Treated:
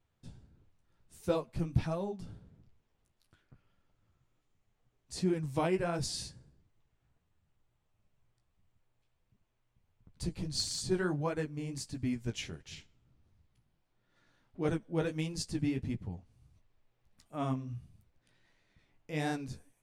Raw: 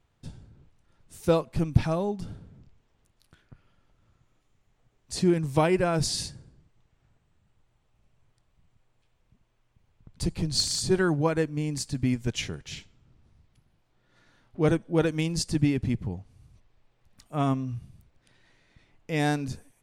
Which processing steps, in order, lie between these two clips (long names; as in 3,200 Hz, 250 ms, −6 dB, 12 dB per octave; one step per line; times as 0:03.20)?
flanger 1.5 Hz, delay 8.9 ms, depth 9.4 ms, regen −23%
level −5 dB